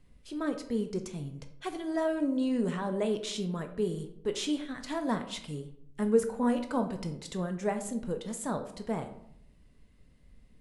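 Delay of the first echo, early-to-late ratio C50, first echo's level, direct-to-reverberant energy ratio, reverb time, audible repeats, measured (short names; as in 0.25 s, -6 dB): none, 10.5 dB, none, 7.0 dB, 0.75 s, none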